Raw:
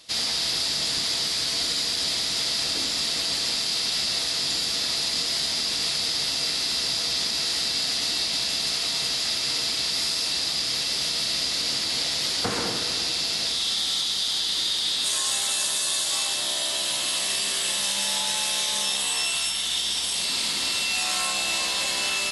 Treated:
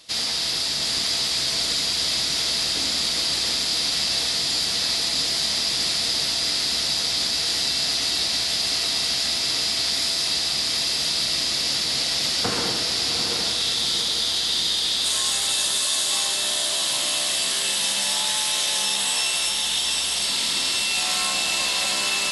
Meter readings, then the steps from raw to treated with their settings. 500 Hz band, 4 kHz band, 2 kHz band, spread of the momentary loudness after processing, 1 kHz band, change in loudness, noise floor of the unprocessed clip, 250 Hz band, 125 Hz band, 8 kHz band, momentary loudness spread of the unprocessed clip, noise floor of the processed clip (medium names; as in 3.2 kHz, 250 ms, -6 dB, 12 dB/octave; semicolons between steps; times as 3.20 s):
+2.5 dB, +2.5 dB, +2.0 dB, 1 LU, +2.5 dB, +2.5 dB, -27 dBFS, +2.5 dB, +3.0 dB, +2.5 dB, 1 LU, -25 dBFS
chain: echo that smears into a reverb 763 ms, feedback 52%, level -5 dB; trim +1 dB